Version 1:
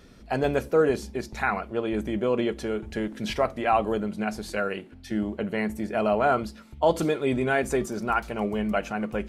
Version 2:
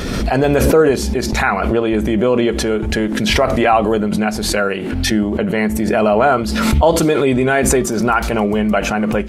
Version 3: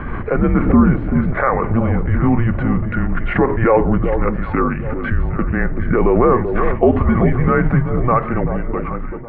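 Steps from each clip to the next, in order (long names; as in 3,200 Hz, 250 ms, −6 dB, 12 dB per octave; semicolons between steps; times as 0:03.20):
in parallel at +1 dB: brickwall limiter −17.5 dBFS, peak gain reduction 7.5 dB; on the sum: background raised ahead of every attack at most 28 dB per second; level +4.5 dB
fade-out on the ending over 1.11 s; single-sideband voice off tune −240 Hz 160–2,200 Hz; delay that swaps between a low-pass and a high-pass 384 ms, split 850 Hz, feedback 56%, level −7 dB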